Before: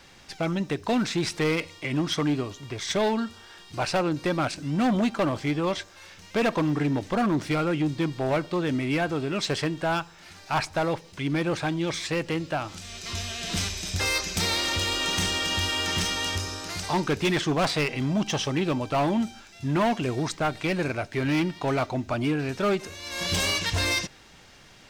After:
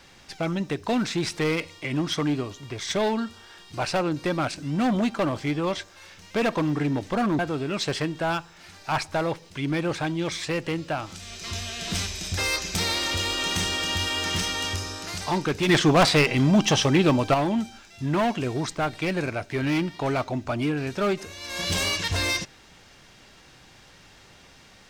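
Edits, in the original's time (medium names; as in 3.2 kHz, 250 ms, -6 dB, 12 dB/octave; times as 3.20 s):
7.39–9.01 s: delete
17.31–18.96 s: gain +6.5 dB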